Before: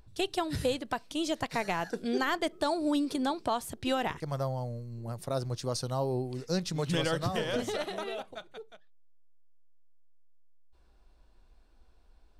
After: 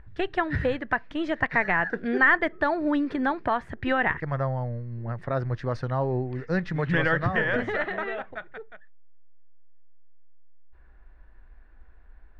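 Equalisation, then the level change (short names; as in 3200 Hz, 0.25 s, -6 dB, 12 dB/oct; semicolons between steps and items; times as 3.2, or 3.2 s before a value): synth low-pass 1800 Hz, resonance Q 5.3; low shelf 110 Hz +8.5 dB; +2.5 dB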